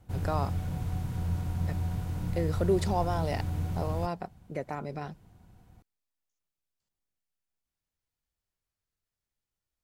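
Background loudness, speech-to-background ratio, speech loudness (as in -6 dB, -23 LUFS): -33.5 LUFS, -0.5 dB, -34.0 LUFS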